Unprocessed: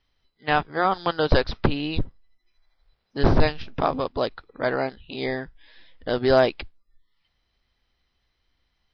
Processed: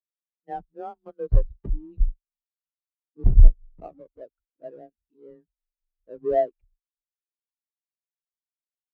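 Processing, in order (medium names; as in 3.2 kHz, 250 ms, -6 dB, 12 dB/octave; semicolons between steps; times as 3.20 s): square wave that keeps the level; frequency shift +21 Hz; spectral contrast expander 2.5:1; trim -4 dB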